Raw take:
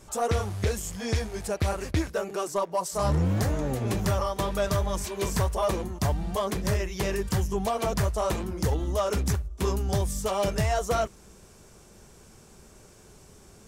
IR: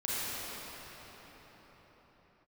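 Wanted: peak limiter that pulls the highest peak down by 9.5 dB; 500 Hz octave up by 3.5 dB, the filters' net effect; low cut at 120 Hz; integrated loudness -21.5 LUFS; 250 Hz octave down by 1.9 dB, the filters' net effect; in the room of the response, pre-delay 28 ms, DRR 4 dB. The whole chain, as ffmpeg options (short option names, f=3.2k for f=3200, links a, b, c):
-filter_complex "[0:a]highpass=120,equalizer=f=250:t=o:g=-4,equalizer=f=500:t=o:g=5.5,alimiter=limit=-22.5dB:level=0:latency=1,asplit=2[a][b];[1:a]atrim=start_sample=2205,adelay=28[c];[b][c]afir=irnorm=-1:irlink=0,volume=-12dB[d];[a][d]amix=inputs=2:normalize=0,volume=9dB"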